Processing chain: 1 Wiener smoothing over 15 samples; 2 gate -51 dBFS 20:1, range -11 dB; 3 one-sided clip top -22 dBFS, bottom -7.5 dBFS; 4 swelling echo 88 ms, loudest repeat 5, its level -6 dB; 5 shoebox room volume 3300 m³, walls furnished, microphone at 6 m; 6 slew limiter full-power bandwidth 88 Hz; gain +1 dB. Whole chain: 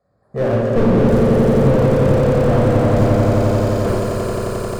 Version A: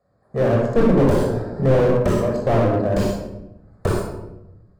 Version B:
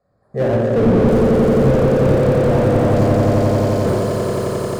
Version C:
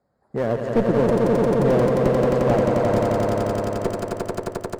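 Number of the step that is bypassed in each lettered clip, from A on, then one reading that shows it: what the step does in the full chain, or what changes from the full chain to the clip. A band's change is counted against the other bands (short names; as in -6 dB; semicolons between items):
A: 4, momentary loudness spread change +7 LU; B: 3, distortion -9 dB; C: 5, momentary loudness spread change +2 LU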